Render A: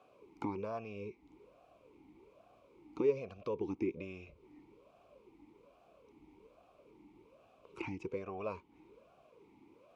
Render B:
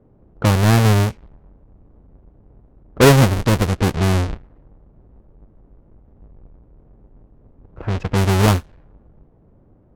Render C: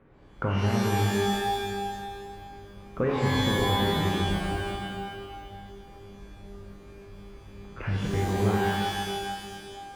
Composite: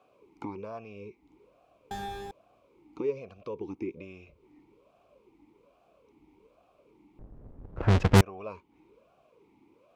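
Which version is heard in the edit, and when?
A
1.91–2.31 from C
7.19–8.21 from B

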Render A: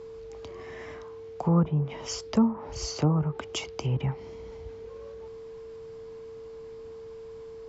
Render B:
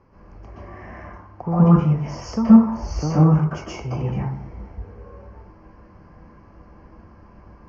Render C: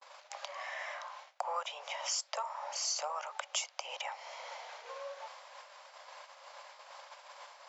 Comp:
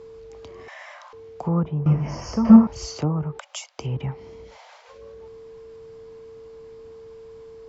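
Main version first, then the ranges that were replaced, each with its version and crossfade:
A
0.68–1.13 from C
1.86–2.67 from B
3.39–3.79 from C
4.51–4.95 from C, crossfade 0.16 s

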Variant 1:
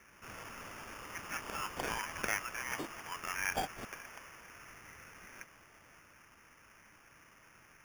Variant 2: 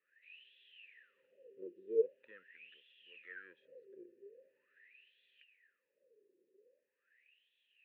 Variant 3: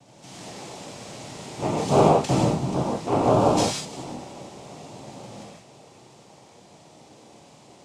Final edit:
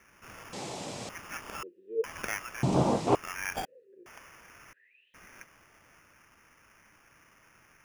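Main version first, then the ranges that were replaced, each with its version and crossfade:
1
0.53–1.09 from 3
1.63–2.04 from 2
2.63–3.15 from 3
3.65–4.06 from 2
4.73–5.14 from 2

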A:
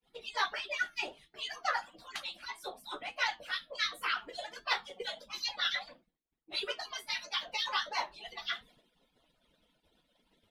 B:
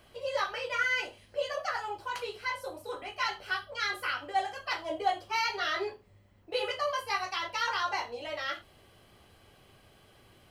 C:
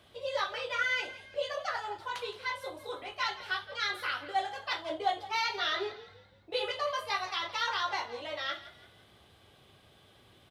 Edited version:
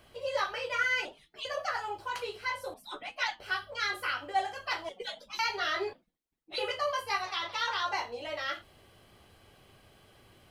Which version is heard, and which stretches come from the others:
B
1.05–1.45 from A
2.74–3.4 from A
4.89–5.39 from A
5.93–6.58 from A
7.22–7.86 from C

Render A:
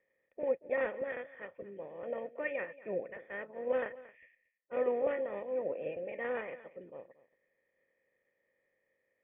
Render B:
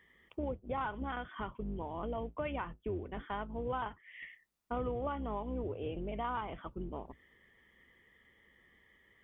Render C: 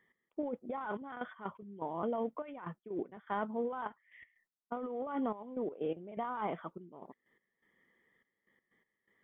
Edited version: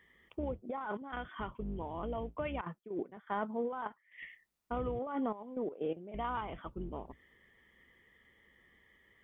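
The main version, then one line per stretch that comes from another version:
B
0.62–1.13 from C
2.61–4.18 from C
4.99–6.14 from C
not used: A

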